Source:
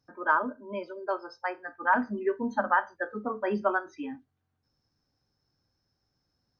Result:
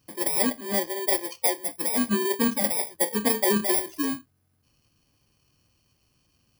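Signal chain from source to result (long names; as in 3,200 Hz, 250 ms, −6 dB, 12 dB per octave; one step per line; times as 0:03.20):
samples in bit-reversed order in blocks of 32 samples
compressor whose output falls as the input rises −29 dBFS, ratio −1
level +7 dB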